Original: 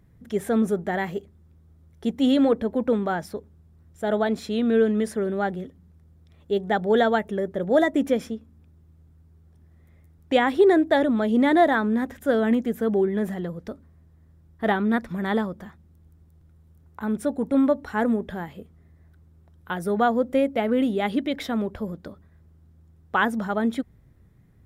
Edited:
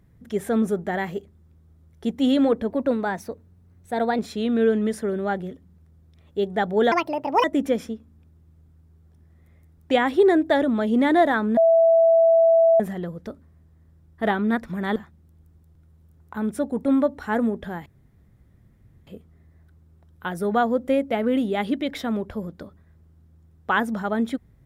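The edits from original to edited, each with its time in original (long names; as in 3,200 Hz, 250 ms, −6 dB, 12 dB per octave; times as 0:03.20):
0:02.70–0:04.32: play speed 109%
0:07.05–0:07.85: play speed 153%
0:11.98–0:13.21: beep over 660 Hz −12.5 dBFS
0:15.37–0:15.62: remove
0:18.52: splice in room tone 1.21 s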